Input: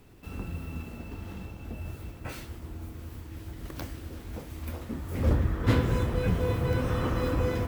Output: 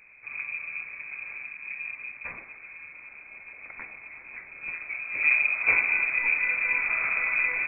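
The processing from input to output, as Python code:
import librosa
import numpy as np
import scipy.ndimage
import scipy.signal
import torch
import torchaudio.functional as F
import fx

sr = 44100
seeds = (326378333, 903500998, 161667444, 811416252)

y = fx.low_shelf(x, sr, hz=110.0, db=-11.0, at=(2.4, 4.64))
y = fx.freq_invert(y, sr, carrier_hz=2500)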